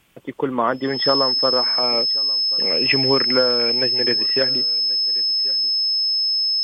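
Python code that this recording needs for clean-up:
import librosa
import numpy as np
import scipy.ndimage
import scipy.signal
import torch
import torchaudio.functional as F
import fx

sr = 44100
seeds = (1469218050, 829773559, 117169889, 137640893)

y = fx.notch(x, sr, hz=5200.0, q=30.0)
y = fx.fix_echo_inverse(y, sr, delay_ms=1084, level_db=-22.0)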